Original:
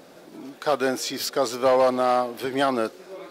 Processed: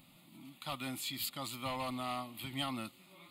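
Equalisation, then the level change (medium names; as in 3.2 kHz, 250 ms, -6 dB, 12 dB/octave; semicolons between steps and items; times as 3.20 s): amplifier tone stack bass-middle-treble 6-0-2; static phaser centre 1.6 kHz, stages 6; +12.0 dB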